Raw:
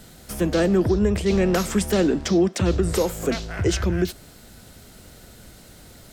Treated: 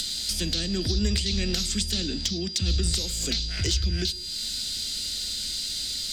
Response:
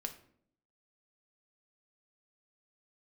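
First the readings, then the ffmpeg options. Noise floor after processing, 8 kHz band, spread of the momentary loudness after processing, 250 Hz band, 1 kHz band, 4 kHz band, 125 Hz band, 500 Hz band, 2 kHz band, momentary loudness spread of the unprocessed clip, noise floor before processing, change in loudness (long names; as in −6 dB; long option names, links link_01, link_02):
−32 dBFS, +4.5 dB, 3 LU, −10.0 dB, −18.5 dB, +10.0 dB, −3.5 dB, −15.0 dB, −6.0 dB, 7 LU, −47 dBFS, −4.5 dB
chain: -filter_complex "[0:a]equalizer=frequency=4100:width_type=o:width=1.7:gain=11,acompressor=mode=upward:threshold=-38dB:ratio=2.5,equalizer=frequency=125:width_type=o:width=1:gain=-9,equalizer=frequency=500:width_type=o:width=1:gain=-6,equalizer=frequency=1000:width_type=o:width=1:gain=-12,equalizer=frequency=4000:width_type=o:width=1:gain=11,equalizer=frequency=8000:width_type=o:width=1:gain=9,acrossover=split=160[link_01][link_02];[link_02]acompressor=threshold=-31dB:ratio=6[link_03];[link_01][link_03]amix=inputs=2:normalize=0,aeval=exprs='val(0)+0.0112*sin(2*PI*4800*n/s)':channel_layout=same,volume=18.5dB,asoftclip=hard,volume=-18.5dB,asplit=2[link_04][link_05];[1:a]atrim=start_sample=2205[link_06];[link_05][link_06]afir=irnorm=-1:irlink=0,volume=-5dB[link_07];[link_04][link_07]amix=inputs=2:normalize=0"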